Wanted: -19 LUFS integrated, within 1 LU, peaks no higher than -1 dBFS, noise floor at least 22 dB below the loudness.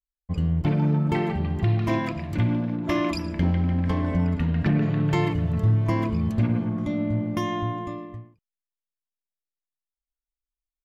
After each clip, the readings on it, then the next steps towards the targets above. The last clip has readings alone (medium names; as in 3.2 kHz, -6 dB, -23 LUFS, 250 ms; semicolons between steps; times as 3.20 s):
loudness -24.5 LUFS; peak level -12.0 dBFS; loudness target -19.0 LUFS
-> trim +5.5 dB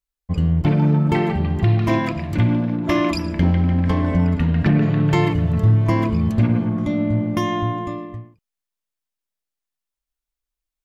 loudness -19.0 LUFS; peak level -6.5 dBFS; noise floor -86 dBFS